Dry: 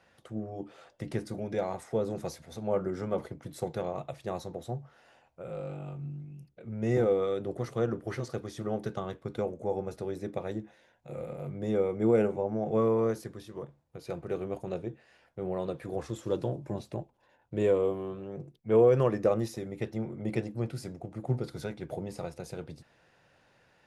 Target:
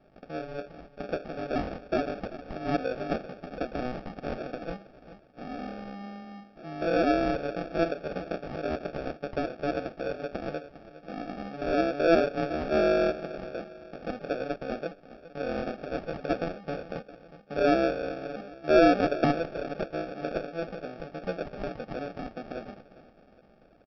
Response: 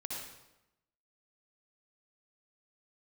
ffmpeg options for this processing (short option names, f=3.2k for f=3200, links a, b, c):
-filter_complex "[0:a]aexciter=amount=15:drive=5.8:freq=3.6k,bass=f=250:g=1,treble=f=4k:g=12,asplit=2[a][b];[b]aecho=0:1:406|812|1218|1624:0.141|0.0636|0.0286|0.0129[c];[a][c]amix=inputs=2:normalize=0,asetrate=62367,aresample=44100,atempo=0.707107,acrossover=split=340|3000[d][e][f];[d]acompressor=threshold=-40dB:ratio=6[g];[g][e][f]amix=inputs=3:normalize=0,aresample=11025,acrusher=samples=11:mix=1:aa=0.000001,aresample=44100,equalizer=f=100:t=o:w=0.67:g=-10,equalizer=f=630:t=o:w=0.67:g=8,equalizer=f=4k:t=o:w=0.67:g=-9"